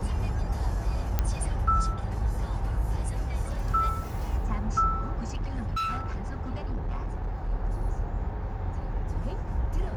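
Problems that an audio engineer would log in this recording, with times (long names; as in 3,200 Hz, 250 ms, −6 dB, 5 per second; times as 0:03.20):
0:01.19: click −12 dBFS
0:05.19–0:07.51: clipping −26.5 dBFS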